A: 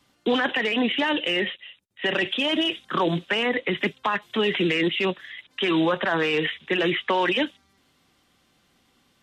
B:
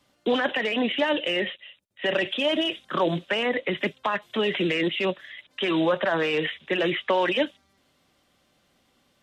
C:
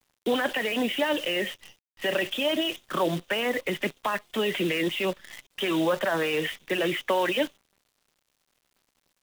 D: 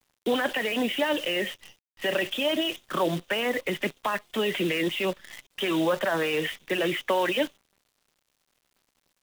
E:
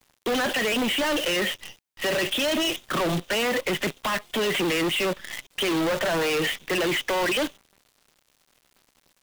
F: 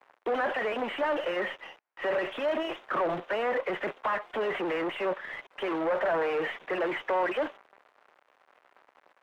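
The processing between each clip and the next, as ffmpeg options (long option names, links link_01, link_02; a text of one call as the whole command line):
ffmpeg -i in.wav -af "equalizer=frequency=590:width=4.1:gain=8,volume=-2.5dB" out.wav
ffmpeg -i in.wav -af "acrusher=bits=7:dc=4:mix=0:aa=0.000001,volume=-2dB" out.wav
ffmpeg -i in.wav -af anull out.wav
ffmpeg -i in.wav -af "volume=31dB,asoftclip=hard,volume=-31dB,volume=8.5dB" out.wav
ffmpeg -i in.wav -filter_complex "[0:a]asplit=2[link_01][link_02];[link_02]highpass=frequency=720:poles=1,volume=18dB,asoftclip=type=tanh:threshold=-22dB[link_03];[link_01][link_03]amix=inputs=2:normalize=0,lowpass=frequency=1300:poles=1,volume=-6dB,acrossover=split=390 2200:gain=0.2 1 0.112[link_04][link_05][link_06];[link_04][link_05][link_06]amix=inputs=3:normalize=0,volume=1dB" out.wav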